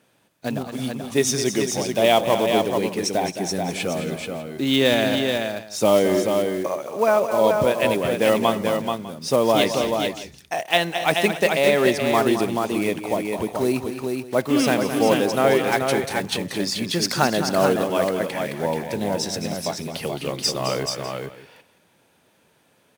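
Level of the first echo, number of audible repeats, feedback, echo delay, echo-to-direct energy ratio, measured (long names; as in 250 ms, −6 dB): −10.0 dB, 4, repeats not evenly spaced, 215 ms, −3.5 dB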